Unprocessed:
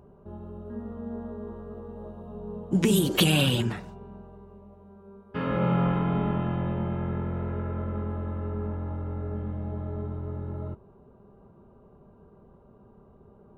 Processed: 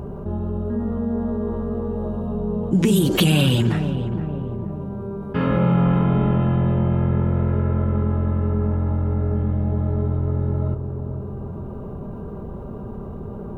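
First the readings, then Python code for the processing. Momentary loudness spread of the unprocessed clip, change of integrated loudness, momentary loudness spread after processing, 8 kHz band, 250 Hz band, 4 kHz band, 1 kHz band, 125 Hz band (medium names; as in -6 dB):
19 LU, +7.0 dB, 16 LU, +1.5 dB, +8.0 dB, +2.0 dB, +5.0 dB, +10.0 dB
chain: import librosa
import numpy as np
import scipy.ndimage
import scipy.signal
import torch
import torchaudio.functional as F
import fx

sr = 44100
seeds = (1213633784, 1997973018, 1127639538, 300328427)

p1 = fx.low_shelf(x, sr, hz=290.0, db=6.5)
p2 = p1 + fx.echo_filtered(p1, sr, ms=468, feedback_pct=41, hz=810.0, wet_db=-13, dry=0)
y = fx.env_flatten(p2, sr, amount_pct=50)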